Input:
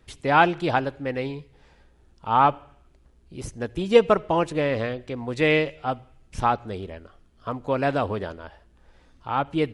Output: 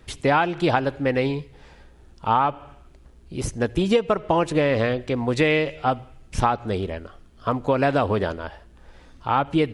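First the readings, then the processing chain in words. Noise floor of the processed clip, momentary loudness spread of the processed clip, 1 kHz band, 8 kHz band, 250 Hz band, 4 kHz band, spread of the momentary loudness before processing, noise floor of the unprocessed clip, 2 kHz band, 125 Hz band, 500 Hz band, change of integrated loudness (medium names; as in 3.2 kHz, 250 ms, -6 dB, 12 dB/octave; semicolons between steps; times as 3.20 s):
-50 dBFS, 12 LU, +0.5 dB, no reading, +3.5 dB, +2.0 dB, 19 LU, -58 dBFS, +0.5 dB, +4.5 dB, +1.0 dB, +1.0 dB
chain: compression 12:1, threshold -23 dBFS, peak gain reduction 14.5 dB; trim +7.5 dB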